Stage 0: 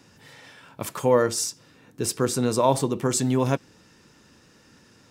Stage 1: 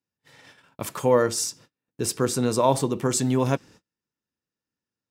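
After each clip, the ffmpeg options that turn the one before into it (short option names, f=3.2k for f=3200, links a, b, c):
-af "agate=range=-36dB:threshold=-47dB:ratio=16:detection=peak"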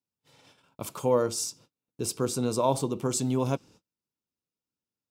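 -af "equalizer=f=1.8k:w=3.9:g=-14,volume=-4.5dB"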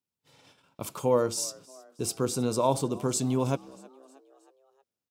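-filter_complex "[0:a]asplit=5[a][b][c][d][e];[b]adelay=316,afreqshift=67,volume=-23dB[f];[c]adelay=632,afreqshift=134,volume=-28.4dB[g];[d]adelay=948,afreqshift=201,volume=-33.7dB[h];[e]adelay=1264,afreqshift=268,volume=-39.1dB[i];[a][f][g][h][i]amix=inputs=5:normalize=0"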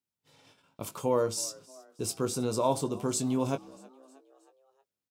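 -filter_complex "[0:a]asplit=2[a][b];[b]adelay=19,volume=-8.5dB[c];[a][c]amix=inputs=2:normalize=0,volume=-2.5dB"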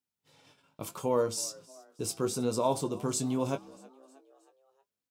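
-af "flanger=delay=3.8:depth=3.6:regen=73:speed=0.79:shape=triangular,volume=3.5dB"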